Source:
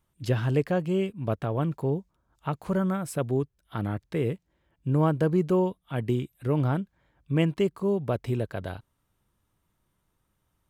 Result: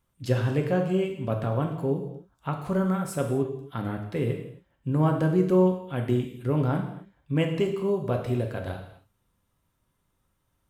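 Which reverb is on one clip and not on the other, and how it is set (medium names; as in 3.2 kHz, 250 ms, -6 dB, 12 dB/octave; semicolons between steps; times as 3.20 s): gated-style reverb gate 300 ms falling, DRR 2.5 dB; trim -1 dB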